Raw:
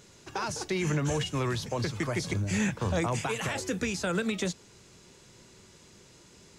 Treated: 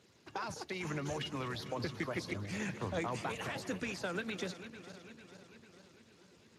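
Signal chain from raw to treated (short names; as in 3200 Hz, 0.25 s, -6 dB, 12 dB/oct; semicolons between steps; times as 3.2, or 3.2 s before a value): regenerating reverse delay 0.224 s, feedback 75%, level -12 dB; harmonic-percussive split harmonic -9 dB; gain -5 dB; Speex 28 kbps 32000 Hz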